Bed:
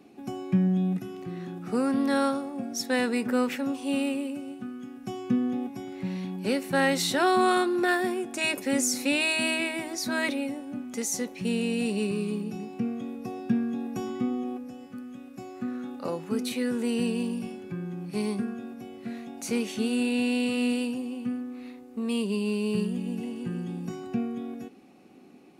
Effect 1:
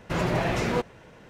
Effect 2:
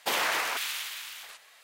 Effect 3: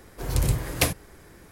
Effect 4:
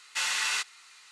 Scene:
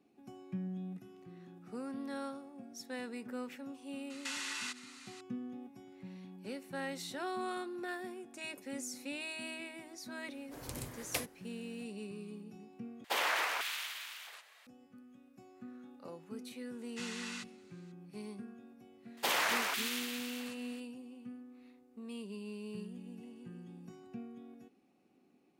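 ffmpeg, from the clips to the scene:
ffmpeg -i bed.wav -i cue0.wav -i cue1.wav -i cue2.wav -i cue3.wav -filter_complex "[4:a]asplit=2[link_01][link_02];[2:a]asplit=2[link_03][link_04];[0:a]volume=-16.5dB[link_05];[link_01]acompressor=threshold=-37dB:ratio=6:attack=3.2:release=140:knee=1:detection=peak[link_06];[3:a]highpass=frequency=320:poles=1[link_07];[link_03]bass=frequency=250:gain=-13,treble=frequency=4000:gain=-5[link_08];[link_02]equalizer=frequency=12000:width_type=o:width=0.75:gain=-4.5[link_09];[link_05]asplit=2[link_10][link_11];[link_10]atrim=end=13.044[link_12];[link_08]atrim=end=1.63,asetpts=PTS-STARTPTS,volume=-4dB[link_13];[link_11]atrim=start=14.666[link_14];[link_06]atrim=end=1.11,asetpts=PTS-STARTPTS,volume=-0.5dB,afade=type=in:duration=0.004:curve=hsin,afade=type=out:start_time=1.106:duration=0.004:curve=hsin,adelay=4100[link_15];[link_07]atrim=end=1.51,asetpts=PTS-STARTPTS,volume=-13dB,afade=type=in:duration=0.004:curve=hsin,afade=type=out:start_time=1.506:duration=0.004:curve=hsin,adelay=10330[link_16];[link_09]atrim=end=1.11,asetpts=PTS-STARTPTS,volume=-15.5dB,afade=type=in:duration=0.004:curve=hsin,afade=type=out:start_time=1.106:duration=0.004:curve=hsin,adelay=16810[link_17];[link_04]atrim=end=1.63,asetpts=PTS-STARTPTS,volume=-4dB,afade=type=in:duration=0.004:curve=hsin,afade=type=out:start_time=1.626:duration=0.004:curve=hsin,adelay=19170[link_18];[link_12][link_13]acrossfade=duration=0.004:curve1=hsin:curve2=hsin[link_19];[link_19][link_14]acrossfade=duration=0.004:curve1=hsin:curve2=hsin[link_20];[link_20][link_15][link_16][link_17][link_18]amix=inputs=5:normalize=0" out.wav

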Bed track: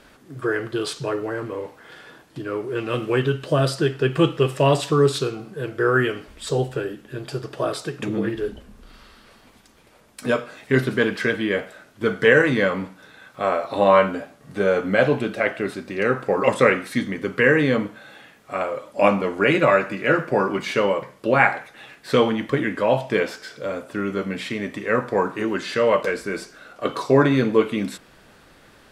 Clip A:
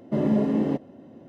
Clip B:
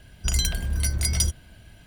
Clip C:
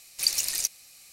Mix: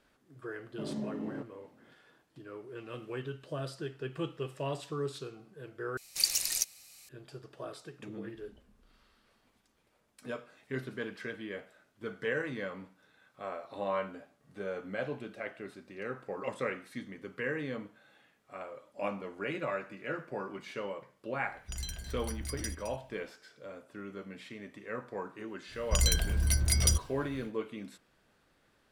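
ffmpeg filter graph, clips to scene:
ffmpeg -i bed.wav -i cue0.wav -i cue1.wav -i cue2.wav -filter_complex "[2:a]asplit=2[link_01][link_02];[0:a]volume=-18.5dB[link_03];[link_01]aecho=1:1:214:0.282[link_04];[link_03]asplit=2[link_05][link_06];[link_05]atrim=end=5.974[link_07];[3:a]atrim=end=1.12,asetpts=PTS-STARTPTS,volume=-3.5dB[link_08];[link_06]atrim=start=7.086[link_09];[1:a]atrim=end=1.28,asetpts=PTS-STARTPTS,volume=-15.5dB,afade=type=in:duration=0.004:curve=hsin,afade=type=out:start_time=1.276:duration=0.004:curve=hsin,adelay=660[link_10];[link_04]atrim=end=1.86,asetpts=PTS-STARTPTS,volume=-16dB,afade=type=in:duration=0.004:curve=hsin,afade=type=out:start_time=1.856:duration=0.004:curve=hsin,adelay=21440[link_11];[link_02]atrim=end=1.86,asetpts=PTS-STARTPTS,volume=-3dB,afade=type=in:duration=0.1,afade=type=out:start_time=1.76:duration=0.1,adelay=25670[link_12];[link_07][link_08]acrossfade=duration=0.004:curve1=hsin:curve2=hsin[link_13];[link_13][link_09]acrossfade=duration=0.004:curve1=hsin:curve2=hsin[link_14];[link_14][link_10][link_11][link_12]amix=inputs=4:normalize=0" out.wav

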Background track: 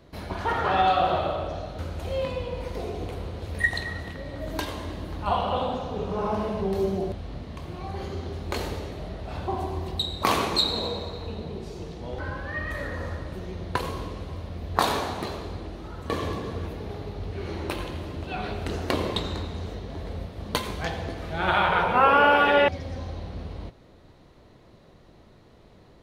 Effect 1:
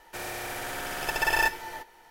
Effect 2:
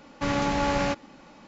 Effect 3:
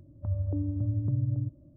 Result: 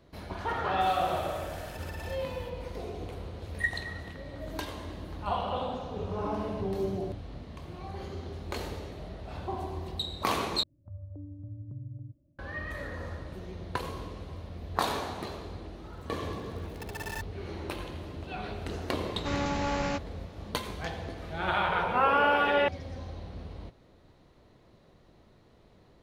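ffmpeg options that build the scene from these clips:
ffmpeg -i bed.wav -i cue0.wav -i cue1.wav -i cue2.wav -filter_complex "[1:a]asplit=2[link_01][link_02];[3:a]asplit=2[link_03][link_04];[0:a]volume=-6dB[link_05];[link_01]acompressor=threshold=-30dB:ratio=6:attack=3.2:release=140:knee=1:detection=peak[link_06];[link_03]aecho=1:1:3.7:0.65[link_07];[link_02]acrusher=bits=3:mix=0:aa=0.5[link_08];[link_05]asplit=2[link_09][link_10];[link_09]atrim=end=10.634[link_11];[link_04]atrim=end=1.76,asetpts=PTS-STARTPTS,volume=-13dB[link_12];[link_10]atrim=start=12.386[link_13];[link_06]atrim=end=2.1,asetpts=PTS-STARTPTS,volume=-11.5dB,afade=type=in:duration=0.004:curve=hsin,afade=type=out:start_time=2.096:duration=0.004:curve=hsin,adelay=670[link_14];[link_07]atrim=end=1.76,asetpts=PTS-STARTPTS,volume=-11.5dB,afade=type=in:duration=0.004:curve=hsin,afade=type=out:start_time=1.756:duration=0.004:curve=hsin,adelay=5720[link_15];[link_08]atrim=end=2.1,asetpts=PTS-STARTPTS,volume=-15.5dB,afade=type=in:duration=0.004:curve=hsin,afade=type=out:start_time=2.096:duration=0.004:curve=hsin,adelay=15730[link_16];[2:a]atrim=end=1.47,asetpts=PTS-STARTPTS,volume=-5.5dB,afade=type=in:duration=0.004:curve=hsin,afade=type=out:start_time=1.466:duration=0.004:curve=hsin,adelay=19040[link_17];[link_11][link_12]acrossfade=duration=0.004:curve1=hsin:curve2=hsin[link_18];[link_18][link_13]acrossfade=duration=0.004:curve1=hsin:curve2=hsin[link_19];[link_19][link_14][link_15][link_16][link_17]amix=inputs=5:normalize=0" out.wav

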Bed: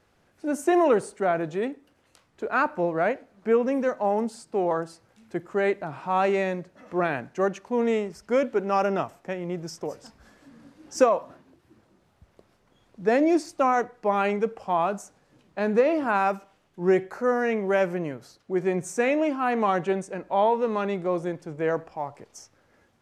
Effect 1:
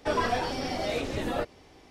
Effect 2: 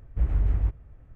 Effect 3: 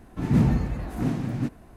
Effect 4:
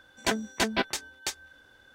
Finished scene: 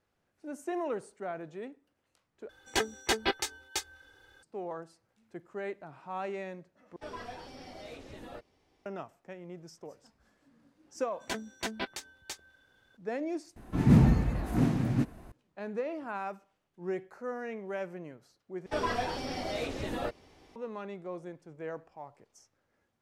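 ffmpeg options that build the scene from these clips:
ffmpeg -i bed.wav -i cue0.wav -i cue1.wav -i cue2.wav -i cue3.wav -filter_complex "[4:a]asplit=2[link_01][link_02];[1:a]asplit=2[link_03][link_04];[0:a]volume=-14dB[link_05];[link_01]aecho=1:1:2.4:0.67[link_06];[link_05]asplit=5[link_07][link_08][link_09][link_10][link_11];[link_07]atrim=end=2.494[link_12];[link_06]atrim=end=1.94,asetpts=PTS-STARTPTS,volume=-3dB[link_13];[link_08]atrim=start=4.426:end=6.964[link_14];[link_03]atrim=end=1.9,asetpts=PTS-STARTPTS,volume=-16dB[link_15];[link_09]atrim=start=8.856:end=13.564[link_16];[3:a]atrim=end=1.76,asetpts=PTS-STARTPTS,volume=-0.5dB[link_17];[link_10]atrim=start=15.316:end=18.664[link_18];[link_04]atrim=end=1.9,asetpts=PTS-STARTPTS,volume=-4.5dB[link_19];[link_11]atrim=start=20.556[link_20];[link_02]atrim=end=1.94,asetpts=PTS-STARTPTS,volume=-9dB,afade=type=in:duration=0.004:curve=hsin,afade=type=out:start_time=1.936:duration=0.004:curve=hsin,adelay=11030[link_21];[link_12][link_13]acrossfade=duration=0.004:curve1=hsin:curve2=hsin[link_22];[link_22][link_14]acrossfade=duration=0.004:curve1=hsin:curve2=hsin[link_23];[link_23][link_15]acrossfade=duration=0.004:curve1=hsin:curve2=hsin[link_24];[link_24][link_16]acrossfade=duration=0.004:curve1=hsin:curve2=hsin[link_25];[link_25][link_17]acrossfade=duration=0.004:curve1=hsin:curve2=hsin[link_26];[link_26][link_18]acrossfade=duration=0.004:curve1=hsin:curve2=hsin[link_27];[link_27][link_19]acrossfade=duration=0.004:curve1=hsin:curve2=hsin[link_28];[link_28][link_20]acrossfade=duration=0.004:curve1=hsin:curve2=hsin[link_29];[link_29][link_21]amix=inputs=2:normalize=0" out.wav

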